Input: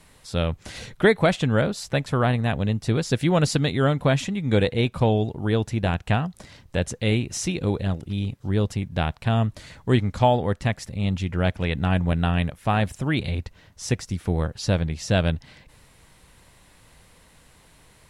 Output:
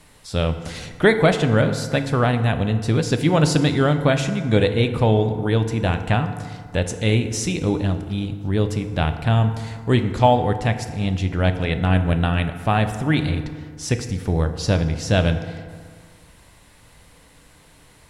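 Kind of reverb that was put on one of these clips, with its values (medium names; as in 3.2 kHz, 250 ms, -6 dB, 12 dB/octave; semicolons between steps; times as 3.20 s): FDN reverb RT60 1.9 s, low-frequency decay 1×, high-frequency decay 0.5×, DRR 7.5 dB; trim +2.5 dB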